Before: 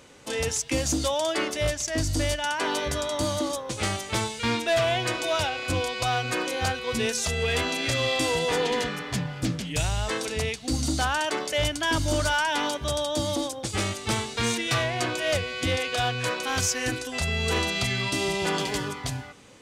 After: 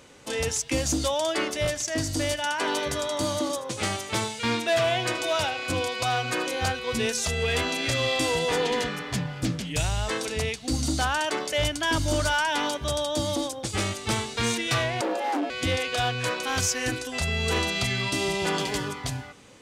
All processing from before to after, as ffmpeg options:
ffmpeg -i in.wav -filter_complex "[0:a]asettb=1/sr,asplit=3[link_01][link_02][link_03];[link_01]atrim=end=1.654[link_04];[link_02]atrim=start=1.65:end=6.47,asetpts=PTS-STARTPTS,afade=type=in:duration=0.004:curve=qsin,afade=type=out:start_time=4.816:duration=0.004:curve=qsin,highpass=100,aecho=1:1:79:0.168,atrim=end_sample=212562[link_05];[link_03]atrim=start=6.466[link_06];[link_04][link_05]acrossfade=duration=0.004:curve1=hsin:curve2=qsin[link_07];[link_07][link_06]acrossfade=duration=0.004:curve1=qsin:curve2=hsin,asettb=1/sr,asplit=3[link_08][link_09][link_10];[link_08]atrim=end=15.014[link_11];[link_09]atrim=start=15.01:end=15.5,asetpts=PTS-STARTPTS,afade=type=in:duration=0.004:curve=qsin,afade=type=out:start_time=0.486:duration=0.004:curve=qsin,tiltshelf=frequency=820:gain=10,asoftclip=type=hard:threshold=-24.5dB,afreqshift=200[link_12];[link_10]atrim=start=15.496[link_13];[link_11][link_12]acrossfade=duration=0.004:curve1=hsin:curve2=qsin[link_14];[link_14][link_13]acrossfade=duration=0.004:curve1=qsin:curve2=hsin" out.wav

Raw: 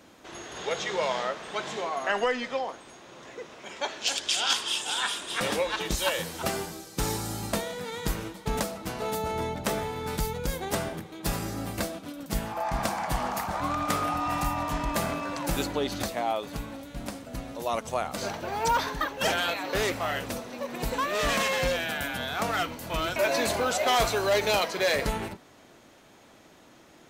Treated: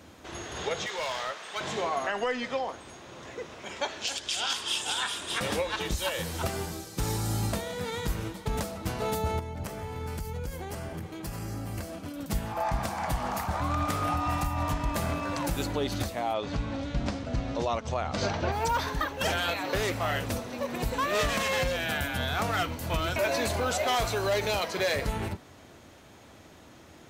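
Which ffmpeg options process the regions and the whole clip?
ffmpeg -i in.wav -filter_complex "[0:a]asettb=1/sr,asplit=3[link_01][link_02][link_03];[link_01]atrim=end=0.864[link_04];[link_02]atrim=start=0.86:end=1.61,asetpts=PTS-STARTPTS,afade=type=in:duration=0.004:curve=qsin,afade=type=out:start_time=0.746:duration=0.004:curve=qsin,highpass=frequency=1200:poles=1,asoftclip=type=hard:threshold=-29dB[link_05];[link_03]atrim=start=1.606[link_06];[link_04][link_05]acrossfade=duration=0.004:curve1=hsin:curve2=qsin[link_07];[link_07][link_06]acrossfade=duration=0.004:curve1=qsin:curve2=hsin,asettb=1/sr,asplit=3[link_08][link_09][link_10];[link_08]atrim=end=9.394[link_11];[link_09]atrim=start=9.39:end=12.16,asetpts=PTS-STARTPTS,afade=type=in:duration=0.004:curve=qsin,afade=type=out:start_time=2.766:duration=0.004:curve=qsin,bandreject=frequency=3700:width=7.3,acompressor=threshold=-36dB:ratio=16:attack=3.2:release=140:knee=1:detection=peak[link_12];[link_10]atrim=start=12.156[link_13];[link_11][link_12]acrossfade=duration=0.004:curve1=hsin:curve2=qsin[link_14];[link_14][link_13]acrossfade=duration=0.004:curve1=qsin:curve2=hsin,asettb=1/sr,asplit=3[link_15][link_16][link_17];[link_15]atrim=end=16.344[link_18];[link_16]atrim=start=16.34:end=18.52,asetpts=PTS-STARTPTS,afade=type=in:duration=0.004:curve=qsin,afade=type=out:start_time=2.176:duration=0.004:curve=qsin,lowpass=frequency=6100:width=0.5412,lowpass=frequency=6100:width=1.3066,acontrast=34[link_19];[link_17]atrim=start=18.516[link_20];[link_18][link_19]acrossfade=duration=0.004:curve1=hsin:curve2=qsin[link_21];[link_21][link_20]acrossfade=duration=0.004:curve1=qsin:curve2=hsin,equalizer=frequency=80:width=1.2:gain=12,alimiter=limit=-20.5dB:level=0:latency=1:release=277,volume=1.5dB" out.wav

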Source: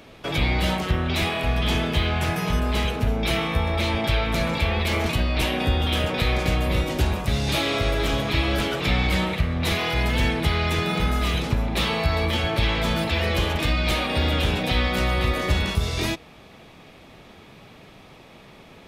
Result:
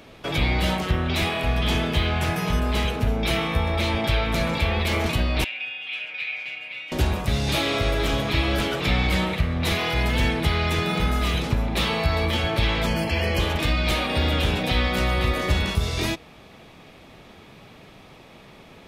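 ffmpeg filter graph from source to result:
ffmpeg -i in.wav -filter_complex "[0:a]asettb=1/sr,asplit=3[link_01][link_02][link_03];[link_01]atrim=end=5.444[link_04];[link_02]atrim=start=5.44:end=6.92,asetpts=PTS-STARTPTS,afade=type=in:duration=0.004:curve=qsin,afade=type=out:start_time=1.476:duration=0.004:curve=qsin,bandpass=frequency=2500:width_type=q:width=5.3,aecho=1:1:6.8:0.79,atrim=end_sample=65268[link_05];[link_03]atrim=start=6.916[link_06];[link_04][link_05]acrossfade=duration=0.004:curve1=hsin:curve2=qsin[link_07];[link_07][link_06]acrossfade=duration=0.004:curve1=qsin:curve2=hsin,asettb=1/sr,asplit=3[link_08][link_09][link_10];[link_08]atrim=end=12.864[link_11];[link_09]atrim=start=12.86:end=13.4,asetpts=PTS-STARTPTS,afade=type=in:duration=0.004:curve=qsin,afade=type=out:start_time=0.536:duration=0.004:curve=qsin,asuperstop=centerf=3700:order=12:qfactor=5.2,equalizer=frequency=1300:width=4.8:gain=-7[link_12];[link_10]atrim=start=13.396[link_13];[link_11][link_12]acrossfade=duration=0.004:curve1=hsin:curve2=qsin[link_14];[link_14][link_13]acrossfade=duration=0.004:curve1=qsin:curve2=hsin" out.wav

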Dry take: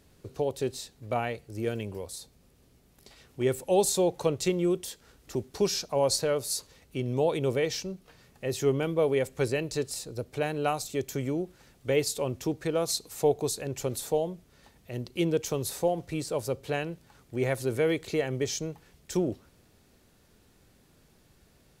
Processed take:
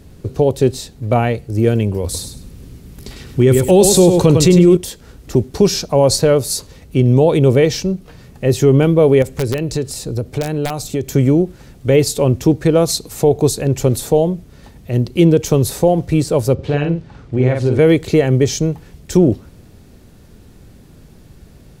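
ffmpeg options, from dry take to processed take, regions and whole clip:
ffmpeg -i in.wav -filter_complex "[0:a]asettb=1/sr,asplit=3[link_01][link_02][link_03];[link_01]atrim=end=2.044[link_04];[link_02]atrim=start=2.04:end=4.77,asetpts=PTS-STARTPTS,afade=type=in:duration=0.004:curve=qsin,afade=type=out:start_time=2.726:duration=0.004:curve=qsin,equalizer=frequency=660:width=1.4:gain=-6,acontrast=45,aecho=1:1:101|202|303:0.398|0.0916|0.0211,atrim=end_sample=120393[link_05];[link_03]atrim=start=4.766[link_06];[link_04][link_05]acrossfade=duration=0.004:curve1=hsin:curve2=qsin[link_07];[link_07][link_06]acrossfade=duration=0.004:curve1=qsin:curve2=hsin,asettb=1/sr,asplit=3[link_08][link_09][link_10];[link_08]atrim=end=9.224[link_11];[link_09]atrim=start=9.22:end=11.06,asetpts=PTS-STARTPTS,afade=type=in:duration=0.004:curve=qsin,afade=type=out:start_time=1.836:duration=0.004:curve=qsin,acompressor=threshold=-34dB:ratio=2.5:attack=3.2:release=140:knee=1:detection=peak,aeval=exprs='(mod(17.8*val(0)+1,2)-1)/17.8':channel_layout=same[link_12];[link_10]atrim=start=11.056[link_13];[link_11][link_12]acrossfade=duration=0.004:curve1=hsin:curve2=qsin[link_14];[link_14][link_13]acrossfade=duration=0.004:curve1=qsin:curve2=hsin,asettb=1/sr,asplit=3[link_15][link_16][link_17];[link_15]atrim=end=16.544[link_18];[link_16]atrim=start=16.54:end=17.79,asetpts=PTS-STARTPTS,afade=type=in:duration=0.004:curve=qsin,afade=type=out:start_time=1.246:duration=0.004:curve=qsin,lowpass=4400,acompressor=threshold=-32dB:ratio=2:attack=3.2:release=140:knee=1:detection=peak,asplit=2[link_19][link_20];[link_20]adelay=48,volume=-4dB[link_21];[link_19][link_21]amix=inputs=2:normalize=0,atrim=end_sample=55125[link_22];[link_17]atrim=start=17.786[link_23];[link_18][link_22]acrossfade=duration=0.004:curve1=hsin:curve2=qsin[link_24];[link_24][link_23]acrossfade=duration=0.004:curve1=qsin:curve2=hsin,lowshelf=frequency=390:gain=11.5,alimiter=level_in=11.5dB:limit=-1dB:release=50:level=0:latency=1,volume=-1dB" out.wav

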